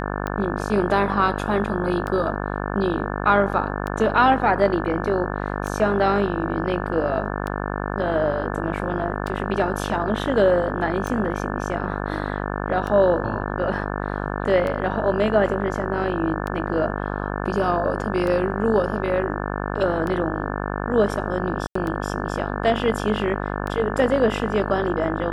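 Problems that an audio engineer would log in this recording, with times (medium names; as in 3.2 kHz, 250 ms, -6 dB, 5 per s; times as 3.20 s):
buzz 50 Hz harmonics 35 -27 dBFS
tick 33 1/3 rpm -16 dBFS
21.67–21.75 s: dropout 84 ms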